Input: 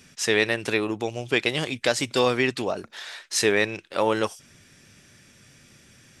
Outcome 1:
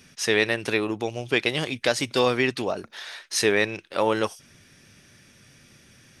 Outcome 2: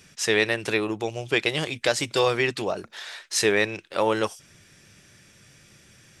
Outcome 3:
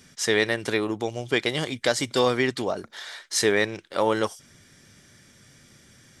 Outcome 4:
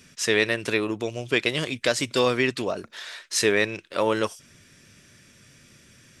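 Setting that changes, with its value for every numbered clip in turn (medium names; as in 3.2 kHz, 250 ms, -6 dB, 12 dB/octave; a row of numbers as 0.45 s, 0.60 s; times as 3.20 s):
band-stop, frequency: 7.5 kHz, 250 Hz, 2.6 kHz, 800 Hz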